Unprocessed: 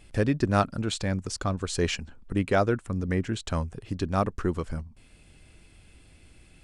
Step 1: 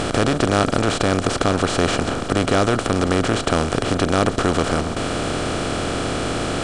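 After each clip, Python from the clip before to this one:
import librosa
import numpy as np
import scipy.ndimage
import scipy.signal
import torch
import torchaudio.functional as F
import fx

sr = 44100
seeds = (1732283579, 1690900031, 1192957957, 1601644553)

y = fx.bin_compress(x, sr, power=0.2)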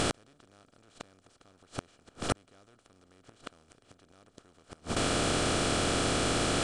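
y = fx.high_shelf(x, sr, hz=2900.0, db=7.0)
y = fx.gate_flip(y, sr, shuts_db=-8.0, range_db=-37)
y = y * librosa.db_to_amplitude(-6.5)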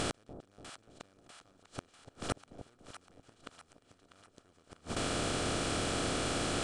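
y = fx.echo_split(x, sr, split_hz=790.0, low_ms=292, high_ms=646, feedback_pct=52, wet_db=-11.5)
y = y * librosa.db_to_amplitude(-5.5)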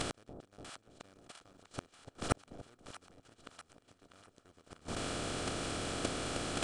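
y = fx.level_steps(x, sr, step_db=11)
y = y * librosa.db_to_amplitude(5.5)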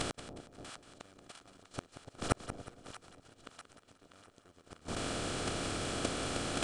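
y = fx.echo_feedback(x, sr, ms=181, feedback_pct=41, wet_db=-11.5)
y = y * librosa.db_to_amplitude(1.0)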